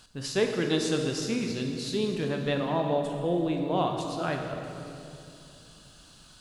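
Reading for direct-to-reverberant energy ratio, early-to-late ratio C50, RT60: 2.5 dB, 4.0 dB, 2.7 s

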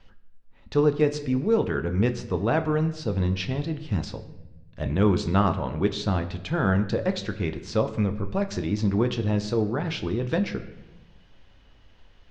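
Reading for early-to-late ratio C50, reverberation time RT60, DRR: 12.5 dB, 1.0 s, 7.5 dB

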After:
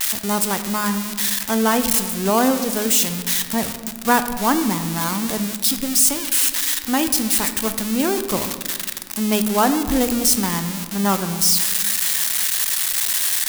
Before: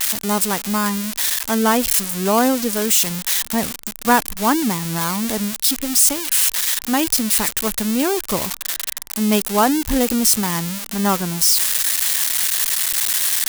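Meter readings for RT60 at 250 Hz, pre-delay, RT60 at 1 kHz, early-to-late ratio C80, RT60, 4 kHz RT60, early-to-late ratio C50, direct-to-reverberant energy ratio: 2.6 s, 11 ms, 1.5 s, 11.5 dB, 1.6 s, 0.90 s, 10.0 dB, 8.5 dB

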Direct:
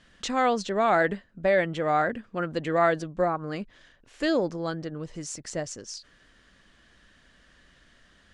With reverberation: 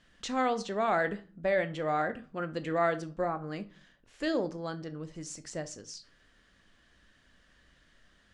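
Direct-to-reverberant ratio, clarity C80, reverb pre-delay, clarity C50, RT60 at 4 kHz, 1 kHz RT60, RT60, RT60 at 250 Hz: 11.0 dB, 23.5 dB, 19 ms, 17.5 dB, 0.30 s, 0.40 s, 0.40 s, 0.60 s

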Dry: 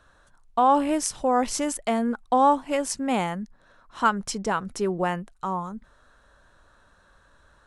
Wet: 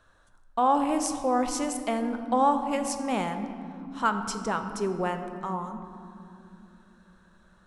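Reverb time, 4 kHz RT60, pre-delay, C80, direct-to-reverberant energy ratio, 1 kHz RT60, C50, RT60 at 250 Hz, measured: 3.0 s, 1.4 s, 5 ms, 9.5 dB, 7.0 dB, 2.5 s, 8.5 dB, 5.1 s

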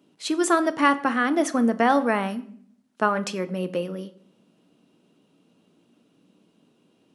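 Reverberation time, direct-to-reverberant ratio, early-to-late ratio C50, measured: 0.60 s, 11.0 dB, 17.0 dB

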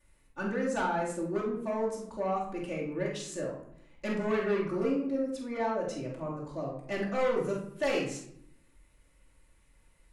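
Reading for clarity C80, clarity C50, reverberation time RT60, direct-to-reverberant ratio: 7.5 dB, 3.5 dB, 0.70 s, -7.0 dB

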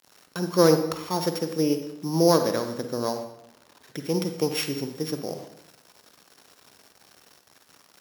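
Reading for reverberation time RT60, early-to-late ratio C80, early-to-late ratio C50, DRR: 0.85 s, 10.5 dB, 8.0 dB, 7.0 dB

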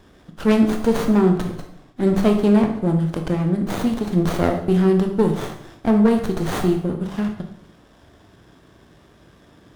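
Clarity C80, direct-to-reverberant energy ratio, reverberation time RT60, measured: 10.5 dB, 3.5 dB, 0.70 s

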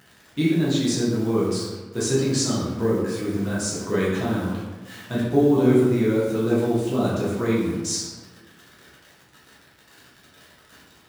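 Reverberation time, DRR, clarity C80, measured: 1.3 s, -7.5 dB, 3.0 dB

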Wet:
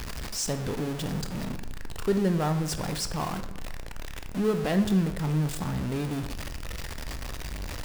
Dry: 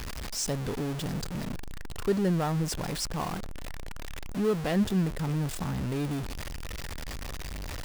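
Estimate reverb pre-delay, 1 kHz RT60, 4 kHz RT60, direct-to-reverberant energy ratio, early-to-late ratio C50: 15 ms, 1.0 s, 0.65 s, 8.5 dB, 11.0 dB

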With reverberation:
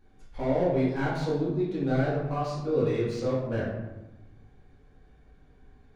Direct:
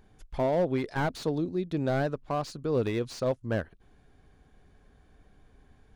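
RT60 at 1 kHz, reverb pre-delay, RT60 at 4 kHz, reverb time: 1.1 s, 4 ms, 0.60 s, 1.0 s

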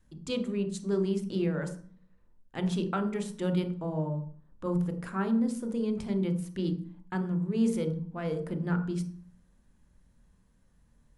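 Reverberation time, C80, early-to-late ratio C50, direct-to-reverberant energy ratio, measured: 0.45 s, 14.5 dB, 10.0 dB, 6.0 dB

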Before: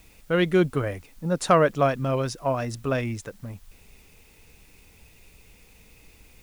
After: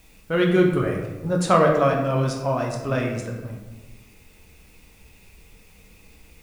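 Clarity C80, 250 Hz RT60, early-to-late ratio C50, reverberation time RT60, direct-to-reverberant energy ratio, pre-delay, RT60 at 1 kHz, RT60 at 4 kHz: 6.0 dB, 1.5 s, 4.5 dB, 1.2 s, 0.0 dB, 9 ms, 1.1 s, 0.70 s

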